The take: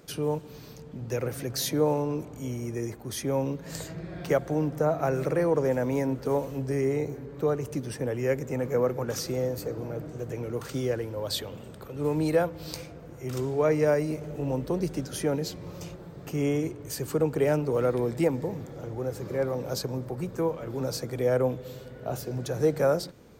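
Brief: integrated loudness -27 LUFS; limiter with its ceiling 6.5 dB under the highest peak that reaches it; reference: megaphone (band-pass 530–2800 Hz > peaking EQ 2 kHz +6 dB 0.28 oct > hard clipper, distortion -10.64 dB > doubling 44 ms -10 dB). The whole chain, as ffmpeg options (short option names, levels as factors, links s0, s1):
-filter_complex "[0:a]alimiter=limit=0.112:level=0:latency=1,highpass=530,lowpass=2800,equalizer=f=2000:t=o:w=0.28:g=6,asoftclip=type=hard:threshold=0.0251,asplit=2[s0][s1];[s1]adelay=44,volume=0.316[s2];[s0][s2]amix=inputs=2:normalize=0,volume=3.55"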